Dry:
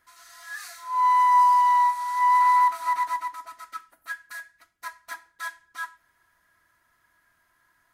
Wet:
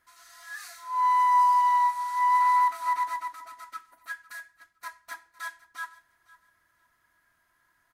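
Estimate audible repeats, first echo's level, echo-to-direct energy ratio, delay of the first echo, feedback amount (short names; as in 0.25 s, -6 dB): 2, -20.0 dB, -20.0 dB, 0.507 s, 21%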